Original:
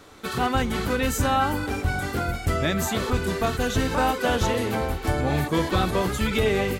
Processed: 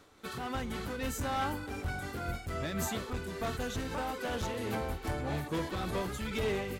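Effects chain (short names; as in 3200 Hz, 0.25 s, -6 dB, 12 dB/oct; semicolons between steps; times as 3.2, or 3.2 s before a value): overloaded stage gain 19.5 dB; noise-modulated level, depth 60%; gain -7 dB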